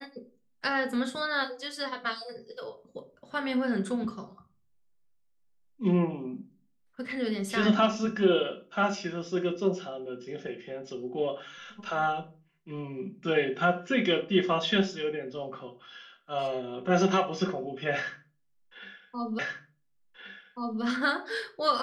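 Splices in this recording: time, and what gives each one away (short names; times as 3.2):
19.39 repeat of the last 1.43 s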